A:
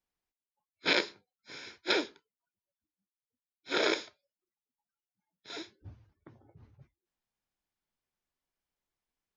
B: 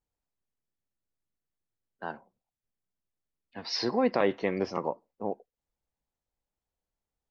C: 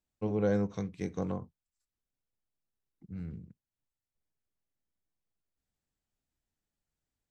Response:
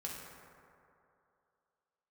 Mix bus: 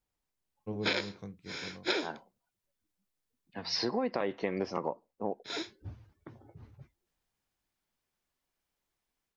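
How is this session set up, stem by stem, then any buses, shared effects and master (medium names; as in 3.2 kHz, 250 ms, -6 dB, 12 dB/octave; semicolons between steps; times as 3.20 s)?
-1.5 dB, 0.00 s, muted 3.60–5.44 s, no send, level rider gain up to 6.5 dB
0.0 dB, 0.00 s, no send, none
-5.0 dB, 0.45 s, no send, treble shelf 4.6 kHz -8.5 dB; auto duck -13 dB, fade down 1.05 s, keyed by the second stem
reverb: none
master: compression 12:1, threshold -27 dBFS, peak gain reduction 11 dB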